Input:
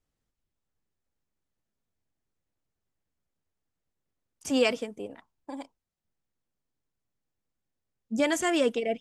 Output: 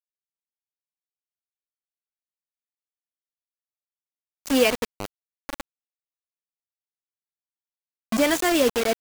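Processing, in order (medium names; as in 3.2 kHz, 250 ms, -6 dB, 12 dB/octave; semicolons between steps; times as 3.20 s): peaking EQ 9 kHz -3 dB 1.1 oct; bit crusher 5-bit; trim +4.5 dB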